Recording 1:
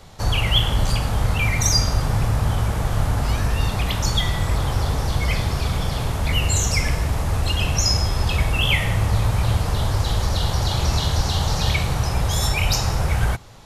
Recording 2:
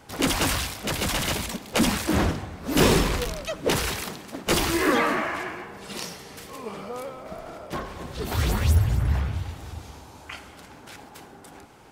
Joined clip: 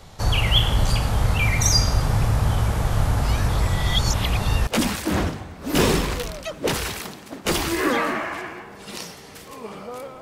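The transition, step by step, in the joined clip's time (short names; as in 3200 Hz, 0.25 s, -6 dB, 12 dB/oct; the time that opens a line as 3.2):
recording 1
3.49–4.67 reverse
4.67 switch to recording 2 from 1.69 s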